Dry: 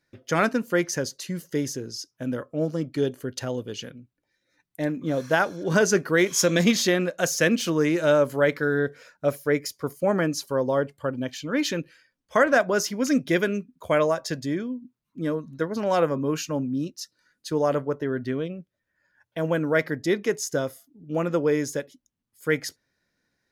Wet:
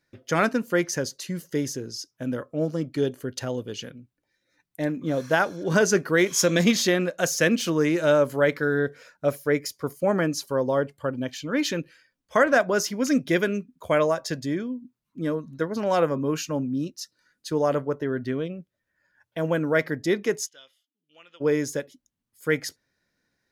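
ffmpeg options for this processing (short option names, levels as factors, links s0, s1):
-filter_complex "[0:a]asplit=3[s0][s1][s2];[s0]afade=t=out:st=20.45:d=0.02[s3];[s1]bandpass=f=3100:t=q:w=6,afade=t=in:st=20.45:d=0.02,afade=t=out:st=21.4:d=0.02[s4];[s2]afade=t=in:st=21.4:d=0.02[s5];[s3][s4][s5]amix=inputs=3:normalize=0"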